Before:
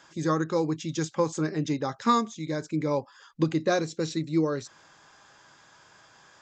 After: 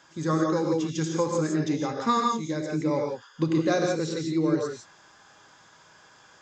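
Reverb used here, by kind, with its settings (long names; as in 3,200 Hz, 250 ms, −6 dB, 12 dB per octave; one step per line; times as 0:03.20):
reverb whose tail is shaped and stops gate 190 ms rising, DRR 1 dB
level −1.5 dB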